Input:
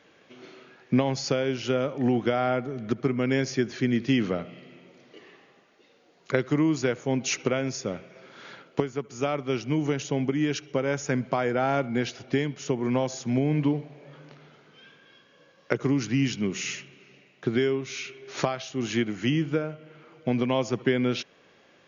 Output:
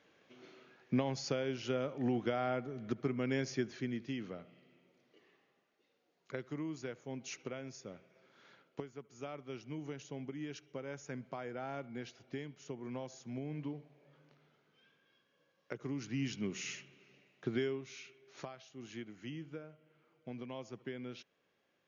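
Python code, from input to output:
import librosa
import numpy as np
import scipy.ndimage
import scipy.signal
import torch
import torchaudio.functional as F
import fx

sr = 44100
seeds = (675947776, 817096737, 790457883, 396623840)

y = fx.gain(x, sr, db=fx.line((3.6, -10.0), (4.14, -17.5), (15.74, -17.5), (16.39, -10.5), (17.59, -10.5), (18.32, -20.0)))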